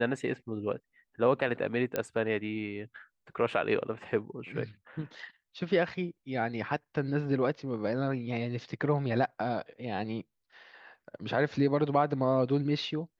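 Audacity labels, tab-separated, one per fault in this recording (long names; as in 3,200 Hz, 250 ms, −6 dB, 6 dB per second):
1.960000	1.960000	click −15 dBFS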